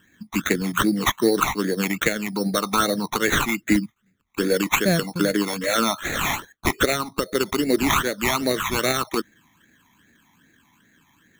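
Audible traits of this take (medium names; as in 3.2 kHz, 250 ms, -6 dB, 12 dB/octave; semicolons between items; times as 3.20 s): aliases and images of a low sample rate 4.9 kHz, jitter 0%; phasing stages 12, 2.5 Hz, lowest notch 480–1000 Hz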